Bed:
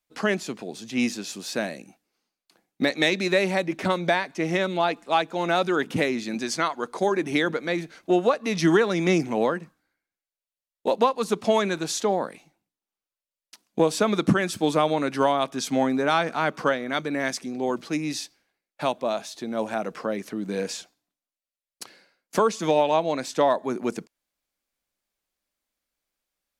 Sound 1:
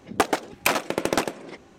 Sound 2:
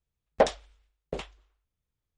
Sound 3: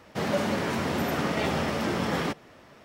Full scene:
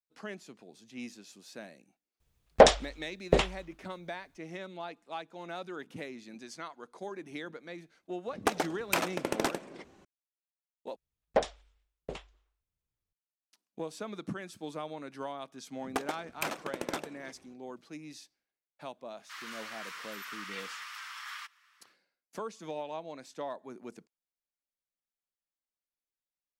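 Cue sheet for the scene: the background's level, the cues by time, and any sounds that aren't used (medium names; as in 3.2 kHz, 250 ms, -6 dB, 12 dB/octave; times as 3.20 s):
bed -18 dB
2.20 s: add 2 -2.5 dB + loudness maximiser +13.5 dB
8.27 s: add 1 -7.5 dB
10.96 s: replace with 2 -5.5 dB
15.76 s: add 1 -13 dB
19.14 s: add 3 -8.5 dB, fades 0.10 s + steep high-pass 1.1 kHz 48 dB/octave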